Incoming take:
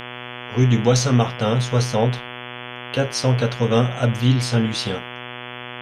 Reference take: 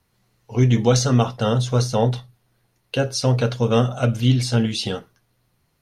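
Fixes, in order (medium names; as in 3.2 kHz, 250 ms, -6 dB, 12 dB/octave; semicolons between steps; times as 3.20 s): de-hum 122.6 Hz, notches 28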